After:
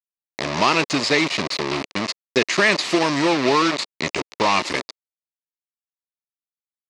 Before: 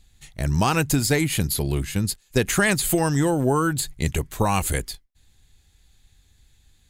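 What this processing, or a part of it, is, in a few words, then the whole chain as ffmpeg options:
hand-held game console: -af "acrusher=bits=3:mix=0:aa=0.000001,highpass=410,equalizer=f=480:t=q:w=4:g=-6,equalizer=f=780:t=q:w=4:g=-8,equalizer=f=1500:t=q:w=4:g=-10,equalizer=f=3200:t=q:w=4:g=-6,lowpass=f=4900:w=0.5412,lowpass=f=4900:w=1.3066,volume=2.66"

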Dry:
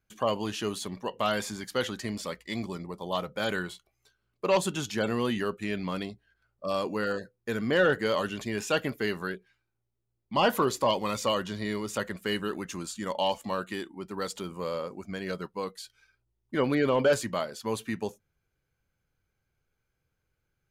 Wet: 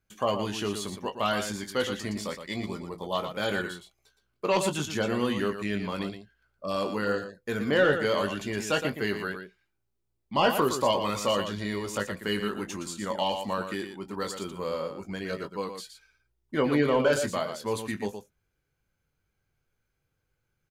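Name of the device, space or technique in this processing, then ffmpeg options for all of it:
slapback doubling: -filter_complex "[0:a]asplit=3[s0][s1][s2];[s1]adelay=20,volume=0.398[s3];[s2]adelay=117,volume=0.398[s4];[s0][s3][s4]amix=inputs=3:normalize=0"

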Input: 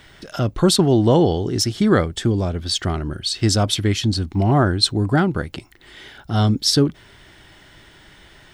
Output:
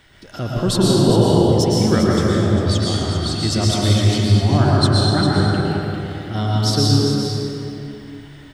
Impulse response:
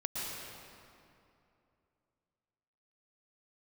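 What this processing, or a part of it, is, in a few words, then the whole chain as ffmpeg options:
cave: -filter_complex "[0:a]aecho=1:1:399:0.376[s0];[1:a]atrim=start_sample=2205[s1];[s0][s1]afir=irnorm=-1:irlink=0,volume=0.708"

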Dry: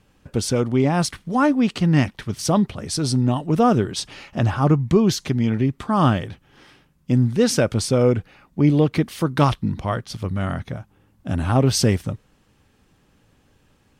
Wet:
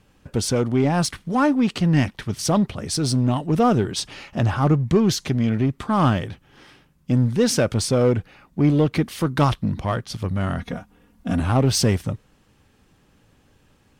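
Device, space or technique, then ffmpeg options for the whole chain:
parallel distortion: -filter_complex "[0:a]asettb=1/sr,asplit=3[s0][s1][s2];[s0]atrim=end=10.584[s3];[s1]atrim=start=10.58:end=11.4,asetpts=PTS-STARTPTS,afade=t=in:d=0.004:c=qsin,afade=t=out:st=0.816:d=0.004:c=qsin,aecho=1:1:4.2:0.94,atrim=end_sample=36162[s4];[s2]atrim=start=11.396[s5];[s3][s4]acrossfade=d=0.004:c1=hsin:c2=qsin[s6];[s6][s5]acrossfade=d=0.004:c1=qsin:c2=hsin,asplit=2[s7][s8];[s8]asoftclip=type=hard:threshold=0.0891,volume=0.596[s9];[s7][s9]amix=inputs=2:normalize=0,volume=0.708"

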